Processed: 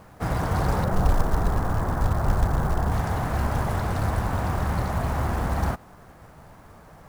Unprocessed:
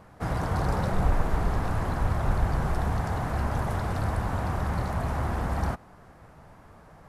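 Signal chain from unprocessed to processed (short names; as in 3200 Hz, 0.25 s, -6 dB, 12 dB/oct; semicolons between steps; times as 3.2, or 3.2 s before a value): 0.84–2.92 LPF 1800 Hz 24 dB/oct; companded quantiser 6-bit; gain +3 dB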